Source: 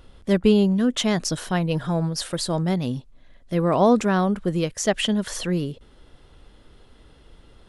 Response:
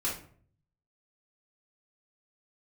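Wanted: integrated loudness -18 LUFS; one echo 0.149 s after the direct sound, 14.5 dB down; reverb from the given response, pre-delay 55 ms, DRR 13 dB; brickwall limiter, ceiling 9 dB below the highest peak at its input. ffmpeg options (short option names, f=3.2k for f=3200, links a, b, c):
-filter_complex "[0:a]alimiter=limit=-15dB:level=0:latency=1,aecho=1:1:149:0.188,asplit=2[a][b];[1:a]atrim=start_sample=2205,adelay=55[c];[b][c]afir=irnorm=-1:irlink=0,volume=-18.5dB[d];[a][d]amix=inputs=2:normalize=0,volume=6.5dB"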